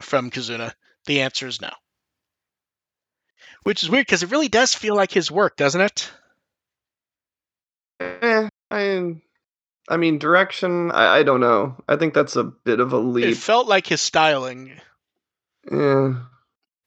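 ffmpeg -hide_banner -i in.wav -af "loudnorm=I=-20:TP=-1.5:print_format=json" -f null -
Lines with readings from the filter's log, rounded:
"input_i" : "-19.4",
"input_tp" : "-1.6",
"input_lra" : "7.2",
"input_thresh" : "-30.5",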